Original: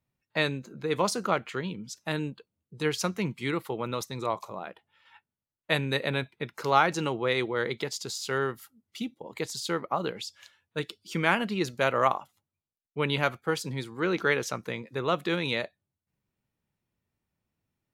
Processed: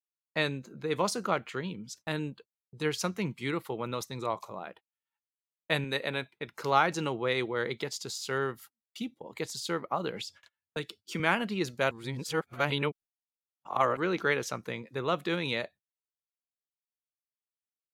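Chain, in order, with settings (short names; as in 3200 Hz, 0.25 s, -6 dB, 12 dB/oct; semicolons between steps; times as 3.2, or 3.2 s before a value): 11.91–13.97 reverse; gate -48 dBFS, range -35 dB; 5.84–6.48 low shelf 170 Hz -10.5 dB; 10.13–11.2 three-band squash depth 70%; gain -2.5 dB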